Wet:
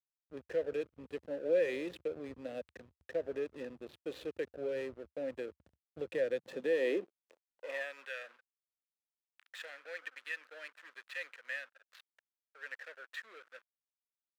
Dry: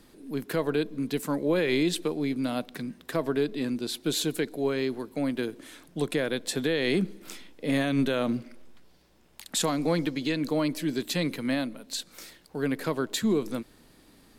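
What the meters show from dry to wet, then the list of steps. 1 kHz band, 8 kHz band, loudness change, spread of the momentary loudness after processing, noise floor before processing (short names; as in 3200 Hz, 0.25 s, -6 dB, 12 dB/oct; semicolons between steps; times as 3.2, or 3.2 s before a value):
-18.5 dB, under -25 dB, -10.5 dB, 20 LU, -58 dBFS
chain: vowel filter e; backlash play -45 dBFS; high-pass sweep 73 Hz -> 1500 Hz, 5.89–8.1; gain +1 dB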